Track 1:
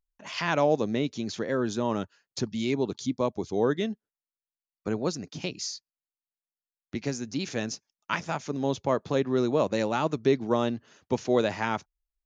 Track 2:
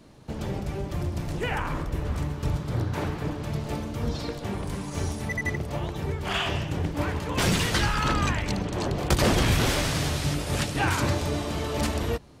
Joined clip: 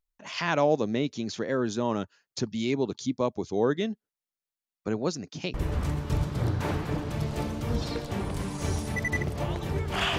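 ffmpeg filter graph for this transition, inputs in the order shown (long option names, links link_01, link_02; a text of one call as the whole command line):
ffmpeg -i cue0.wav -i cue1.wav -filter_complex "[0:a]apad=whole_dur=10.18,atrim=end=10.18,atrim=end=5.542[link_01];[1:a]atrim=start=1.868:end=6.51[link_02];[link_01][link_02]acrossfade=duration=0.004:curve1=hsin:curve2=hsin" out.wav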